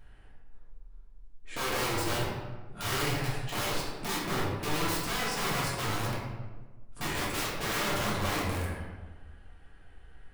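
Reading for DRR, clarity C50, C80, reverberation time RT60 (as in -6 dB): -7.5 dB, 0.5 dB, 3.0 dB, 1.3 s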